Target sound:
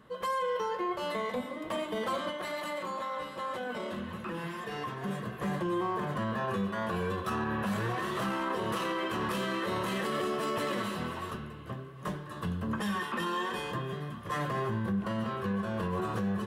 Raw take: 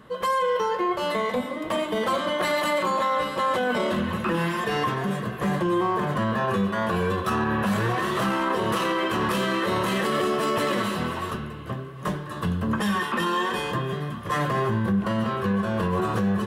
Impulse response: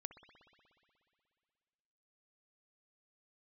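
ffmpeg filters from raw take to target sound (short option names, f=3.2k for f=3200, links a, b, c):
-filter_complex "[0:a]asplit=3[a][b][c];[a]afade=t=out:st=2.3:d=0.02[d];[b]flanger=delay=5.1:depth=5.1:regen=-78:speed=1.9:shape=triangular,afade=t=in:st=2.3:d=0.02,afade=t=out:st=5.02:d=0.02[e];[c]afade=t=in:st=5.02:d=0.02[f];[d][e][f]amix=inputs=3:normalize=0,volume=-8dB"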